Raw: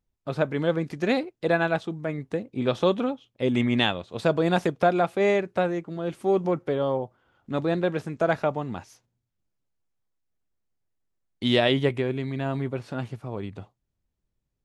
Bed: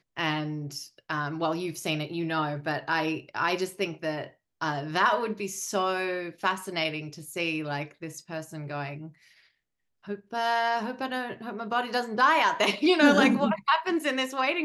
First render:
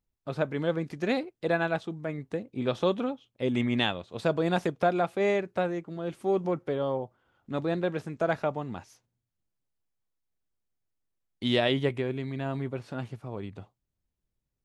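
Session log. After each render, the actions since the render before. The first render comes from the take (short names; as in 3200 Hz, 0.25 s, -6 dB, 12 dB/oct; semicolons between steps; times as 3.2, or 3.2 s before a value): gain -4 dB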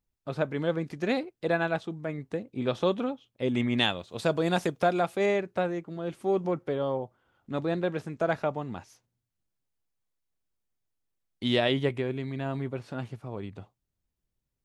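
3.78–5.26 high shelf 4600 Hz +9 dB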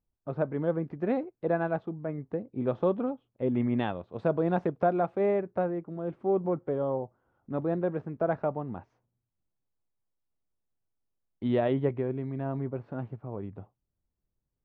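LPF 1100 Hz 12 dB/oct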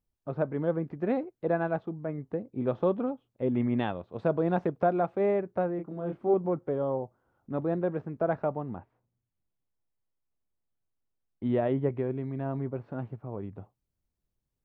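5.76–6.34 doubler 28 ms -4.5 dB; 8.75–11.93 air absorption 360 m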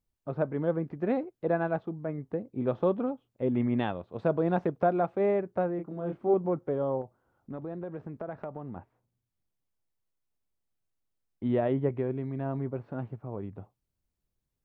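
7.01–8.76 compressor 4:1, threshold -35 dBFS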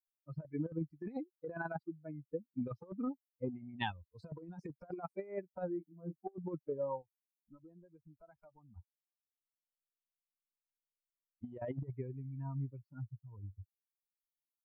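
per-bin expansion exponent 3; negative-ratio compressor -39 dBFS, ratio -0.5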